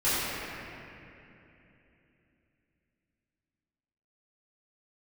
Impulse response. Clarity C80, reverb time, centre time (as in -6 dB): -3.5 dB, 3.0 s, 0.221 s